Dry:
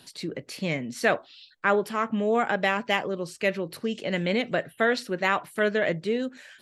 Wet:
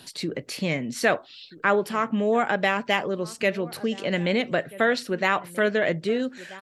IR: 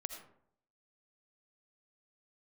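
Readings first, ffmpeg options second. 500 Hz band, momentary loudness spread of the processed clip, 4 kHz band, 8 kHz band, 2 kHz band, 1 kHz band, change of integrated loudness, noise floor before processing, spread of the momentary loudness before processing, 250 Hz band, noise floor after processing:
+1.5 dB, 7 LU, +2.0 dB, +4.0 dB, +1.5 dB, +1.5 dB, +2.0 dB, −56 dBFS, 7 LU, +2.0 dB, −50 dBFS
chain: -filter_complex "[0:a]asplit=2[link_01][link_02];[link_02]adelay=1283,volume=-20dB,highshelf=frequency=4000:gain=-28.9[link_03];[link_01][link_03]amix=inputs=2:normalize=0,asplit=2[link_04][link_05];[link_05]acompressor=threshold=-33dB:ratio=6,volume=-2dB[link_06];[link_04][link_06]amix=inputs=2:normalize=0"

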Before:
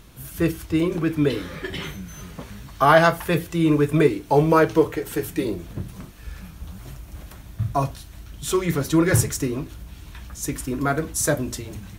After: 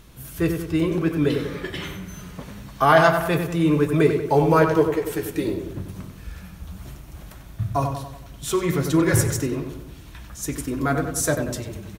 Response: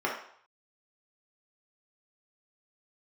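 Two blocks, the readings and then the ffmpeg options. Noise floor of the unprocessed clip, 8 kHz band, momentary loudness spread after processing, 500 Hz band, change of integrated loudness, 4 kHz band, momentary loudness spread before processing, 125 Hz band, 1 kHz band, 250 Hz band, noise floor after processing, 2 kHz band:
−43 dBFS, −1.0 dB, 22 LU, 0.0 dB, 0.0 dB, −0.5 dB, 22 LU, +0.5 dB, 0.0 dB, 0.0 dB, −42 dBFS, 0.0 dB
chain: -filter_complex "[0:a]asplit=2[link_01][link_02];[link_02]adelay=94,lowpass=frequency=2500:poles=1,volume=-6dB,asplit=2[link_03][link_04];[link_04]adelay=94,lowpass=frequency=2500:poles=1,volume=0.54,asplit=2[link_05][link_06];[link_06]adelay=94,lowpass=frequency=2500:poles=1,volume=0.54,asplit=2[link_07][link_08];[link_08]adelay=94,lowpass=frequency=2500:poles=1,volume=0.54,asplit=2[link_09][link_10];[link_10]adelay=94,lowpass=frequency=2500:poles=1,volume=0.54,asplit=2[link_11][link_12];[link_12]adelay=94,lowpass=frequency=2500:poles=1,volume=0.54,asplit=2[link_13][link_14];[link_14]adelay=94,lowpass=frequency=2500:poles=1,volume=0.54[link_15];[link_01][link_03][link_05][link_07][link_09][link_11][link_13][link_15]amix=inputs=8:normalize=0,volume=-1dB"

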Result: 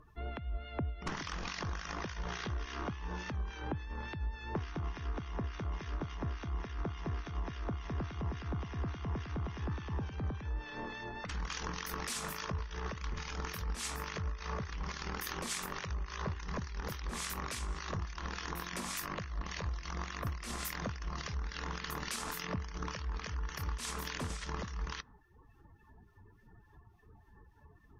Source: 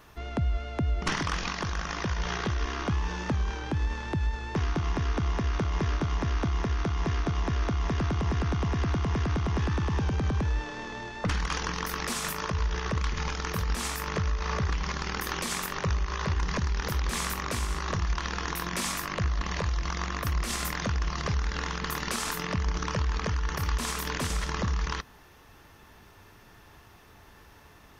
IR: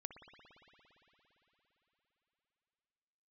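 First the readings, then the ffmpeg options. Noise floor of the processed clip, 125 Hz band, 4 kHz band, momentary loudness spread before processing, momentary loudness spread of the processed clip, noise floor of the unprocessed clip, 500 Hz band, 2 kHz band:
−62 dBFS, −10.5 dB, −8.5 dB, 3 LU, 3 LU, −54 dBFS, −9.0 dB, −9.0 dB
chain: -filter_complex "[0:a]afftdn=noise_reduction=26:noise_floor=-48,acompressor=threshold=-31dB:ratio=10,highshelf=frequency=4400:gain=2,acrossover=split=1500[link_01][link_02];[link_01]aeval=exprs='val(0)*(1-0.7/2+0.7/2*cos(2*PI*3.5*n/s))':channel_layout=same[link_03];[link_02]aeval=exprs='val(0)*(1-0.7/2-0.7/2*cos(2*PI*3.5*n/s))':channel_layout=same[link_04];[link_03][link_04]amix=inputs=2:normalize=0,acompressor=mode=upward:threshold=-53dB:ratio=2.5,volume=-1dB"

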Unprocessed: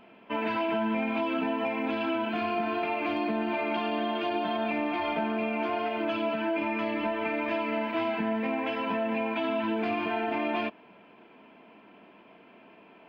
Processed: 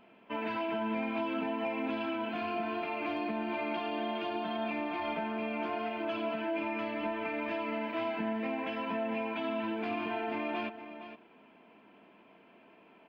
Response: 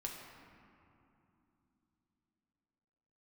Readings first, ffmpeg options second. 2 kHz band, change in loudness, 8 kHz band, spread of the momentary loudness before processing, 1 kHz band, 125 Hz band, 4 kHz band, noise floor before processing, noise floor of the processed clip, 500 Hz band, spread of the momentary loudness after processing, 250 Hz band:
−5.0 dB, −5.0 dB, can't be measured, 1 LU, −5.0 dB, −5.0 dB, −5.0 dB, −55 dBFS, −60 dBFS, −5.0 dB, 2 LU, −5.0 dB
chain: -af "aecho=1:1:463:0.266,volume=-5.5dB"

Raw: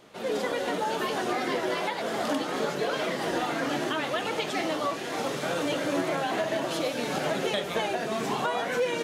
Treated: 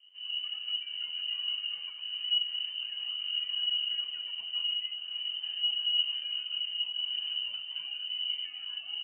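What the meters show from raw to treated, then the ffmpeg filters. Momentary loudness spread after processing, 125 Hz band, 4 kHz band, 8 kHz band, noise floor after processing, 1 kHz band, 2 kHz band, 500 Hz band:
7 LU, below −40 dB, +8.5 dB, below −40 dB, −44 dBFS, below −30 dB, −12.5 dB, below −40 dB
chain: -af "firequalizer=gain_entry='entry(140,0);entry(310,6);entry(500,-25)':delay=0.05:min_phase=1,lowpass=frequency=2700:width_type=q:width=0.5098,lowpass=frequency=2700:width_type=q:width=0.6013,lowpass=frequency=2700:width_type=q:width=0.9,lowpass=frequency=2700:width_type=q:width=2.563,afreqshift=-3200,volume=-2dB"

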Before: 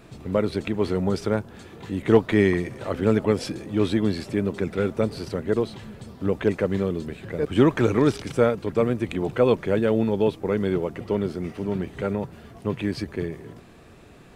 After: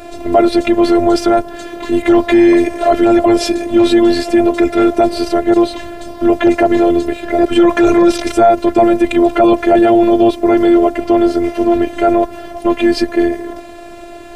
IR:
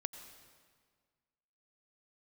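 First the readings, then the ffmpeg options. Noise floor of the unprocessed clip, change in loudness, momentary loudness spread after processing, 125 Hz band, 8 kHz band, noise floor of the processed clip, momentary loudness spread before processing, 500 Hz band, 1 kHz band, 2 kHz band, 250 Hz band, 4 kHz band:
−48 dBFS, +12.5 dB, 8 LU, −3.0 dB, can't be measured, −32 dBFS, 11 LU, +11.5 dB, +18.5 dB, +10.5 dB, +13.5 dB, +13.0 dB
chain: -af "equalizer=frequency=580:width_type=o:width=0.39:gain=14,afftfilt=real='hypot(re,im)*cos(PI*b)':imag='0':win_size=512:overlap=0.75,apsyclip=20dB,volume=-2dB"

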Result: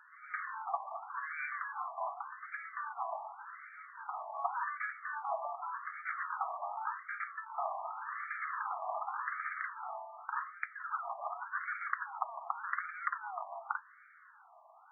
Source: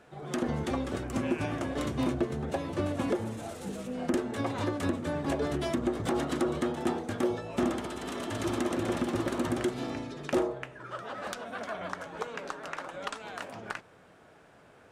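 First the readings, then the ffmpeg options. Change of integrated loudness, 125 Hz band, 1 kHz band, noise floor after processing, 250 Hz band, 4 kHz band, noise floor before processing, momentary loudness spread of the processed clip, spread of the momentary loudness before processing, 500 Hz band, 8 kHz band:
−7.0 dB, below −40 dB, +1.0 dB, −60 dBFS, below −40 dB, below −40 dB, −57 dBFS, 6 LU, 9 LU, −16.0 dB, below −35 dB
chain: -af "highpass=frequency=620:poles=1,afftfilt=real='re*between(b*sr/1024,850*pow(1700/850,0.5+0.5*sin(2*PI*0.87*pts/sr))/1.41,850*pow(1700/850,0.5+0.5*sin(2*PI*0.87*pts/sr))*1.41)':imag='im*between(b*sr/1024,850*pow(1700/850,0.5+0.5*sin(2*PI*0.87*pts/sr))/1.41,850*pow(1700/850,0.5+0.5*sin(2*PI*0.87*pts/sr))*1.41)':win_size=1024:overlap=0.75,volume=5dB"

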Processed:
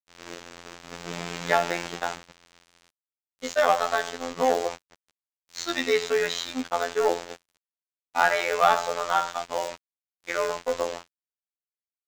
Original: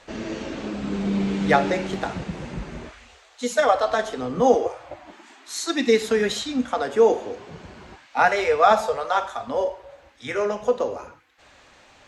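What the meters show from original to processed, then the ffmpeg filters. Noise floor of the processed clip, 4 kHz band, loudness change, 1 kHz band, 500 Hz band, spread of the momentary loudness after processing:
below −85 dBFS, −0.5 dB, −3.5 dB, −2.5 dB, −5.5 dB, 19 LU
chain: -filter_complex "[0:a]asplit=2[link_01][link_02];[link_02]highpass=frequency=720:poles=1,volume=14dB,asoftclip=type=tanh:threshold=-3.5dB[link_03];[link_01][link_03]amix=inputs=2:normalize=0,lowpass=frequency=3400:poles=1,volume=-6dB,lowshelf=frequency=210:gain=-6,aresample=16000,acrusher=bits=4:mix=0:aa=0.000001,aresample=44100,agate=range=-17dB:threshold=-26dB:ratio=16:detection=peak,asplit=2[link_04][link_05];[link_05]acrusher=bits=2:mode=log:mix=0:aa=0.000001,volume=-11dB[link_06];[link_04][link_06]amix=inputs=2:normalize=0,afftfilt=real='hypot(re,im)*cos(PI*b)':imag='0':win_size=2048:overlap=0.75,aeval=exprs='sgn(val(0))*max(abs(val(0))-0.00668,0)':channel_layout=same,volume=-5.5dB"

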